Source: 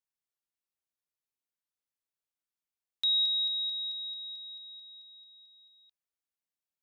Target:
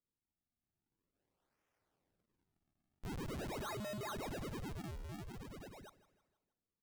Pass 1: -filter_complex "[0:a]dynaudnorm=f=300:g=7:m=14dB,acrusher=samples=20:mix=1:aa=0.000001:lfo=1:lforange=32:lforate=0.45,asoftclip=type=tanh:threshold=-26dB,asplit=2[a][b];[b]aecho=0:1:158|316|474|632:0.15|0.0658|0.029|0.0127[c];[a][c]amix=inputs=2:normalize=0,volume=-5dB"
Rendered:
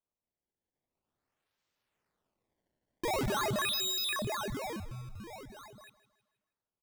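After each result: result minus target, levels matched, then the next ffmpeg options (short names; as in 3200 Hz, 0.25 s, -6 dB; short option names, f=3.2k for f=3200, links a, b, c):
decimation with a swept rate: distortion -12 dB; soft clip: distortion -4 dB
-filter_complex "[0:a]dynaudnorm=f=300:g=7:m=14dB,acrusher=samples=51:mix=1:aa=0.000001:lfo=1:lforange=81.6:lforate=0.45,asoftclip=type=tanh:threshold=-26dB,asplit=2[a][b];[b]aecho=0:1:158|316|474|632:0.15|0.0658|0.029|0.0127[c];[a][c]amix=inputs=2:normalize=0,volume=-5dB"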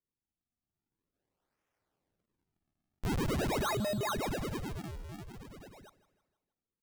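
soft clip: distortion -4 dB
-filter_complex "[0:a]dynaudnorm=f=300:g=7:m=14dB,acrusher=samples=51:mix=1:aa=0.000001:lfo=1:lforange=81.6:lforate=0.45,asoftclip=type=tanh:threshold=-37.5dB,asplit=2[a][b];[b]aecho=0:1:158|316|474|632:0.15|0.0658|0.029|0.0127[c];[a][c]amix=inputs=2:normalize=0,volume=-5dB"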